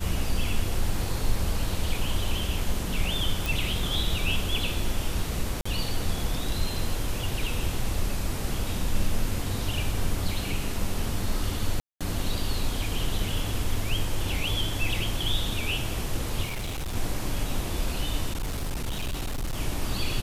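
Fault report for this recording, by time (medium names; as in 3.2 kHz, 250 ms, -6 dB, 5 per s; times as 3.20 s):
3.46 s: pop
5.61–5.66 s: dropout 45 ms
11.80–12.01 s: dropout 206 ms
16.46–16.96 s: clipped -28 dBFS
18.33–19.60 s: clipped -26 dBFS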